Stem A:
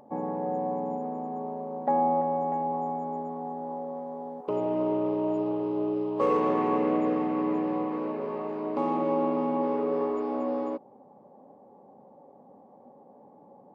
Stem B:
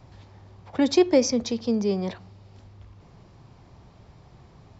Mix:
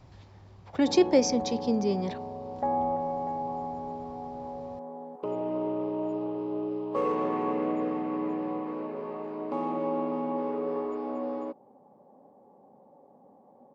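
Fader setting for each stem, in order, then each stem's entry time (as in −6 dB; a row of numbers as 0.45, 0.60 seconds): −3.5, −3.0 decibels; 0.75, 0.00 seconds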